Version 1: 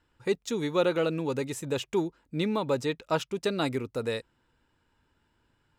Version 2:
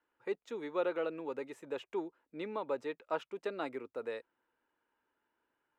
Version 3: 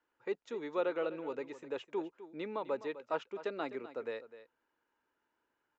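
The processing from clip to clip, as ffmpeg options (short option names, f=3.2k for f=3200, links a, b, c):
-filter_complex "[0:a]acrossover=split=290 2600:gain=0.0631 1 0.141[a][b][c];[a][b][c]amix=inputs=3:normalize=0,volume=-7dB"
-af "aecho=1:1:254:0.188,aresample=16000,aresample=44100"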